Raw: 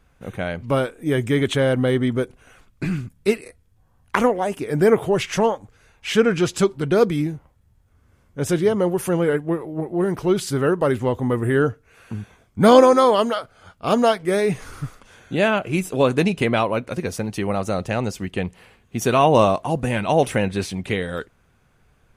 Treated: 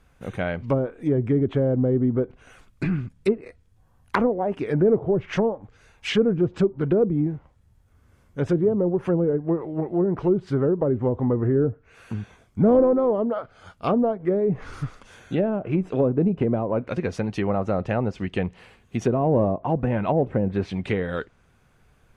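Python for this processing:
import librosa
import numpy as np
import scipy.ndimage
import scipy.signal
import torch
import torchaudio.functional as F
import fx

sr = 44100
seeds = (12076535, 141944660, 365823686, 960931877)

y = 10.0 ** (-7.0 / 20.0) * np.tanh(x / 10.0 ** (-7.0 / 20.0))
y = fx.env_lowpass_down(y, sr, base_hz=490.0, full_db=-16.0)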